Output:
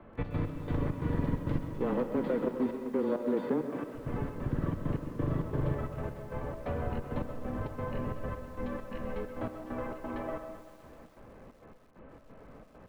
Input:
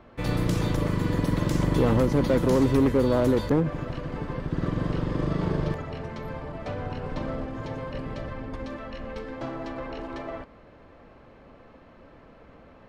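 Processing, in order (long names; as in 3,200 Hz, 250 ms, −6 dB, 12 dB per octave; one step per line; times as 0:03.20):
0:01.81–0:03.94: high-pass filter 220 Hz 24 dB per octave
downward compressor 4 to 1, threshold −26 dBFS, peak gain reduction 7.5 dB
gate pattern "xx.x..xx.x" 133 BPM −12 dB
frequency shifter −18 Hz
high-frequency loss of the air 470 metres
comb and all-pass reverb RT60 0.5 s, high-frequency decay 0.4×, pre-delay 90 ms, DRR 11 dB
feedback echo at a low word length 129 ms, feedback 80%, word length 9 bits, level −14 dB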